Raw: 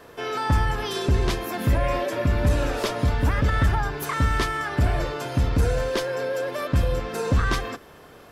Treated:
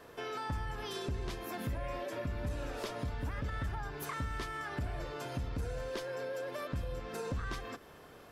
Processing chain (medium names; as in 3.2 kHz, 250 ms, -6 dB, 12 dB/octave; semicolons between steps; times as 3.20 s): compression 2.5:1, threshold -32 dBFS, peak gain reduction 10.5 dB; trim -7 dB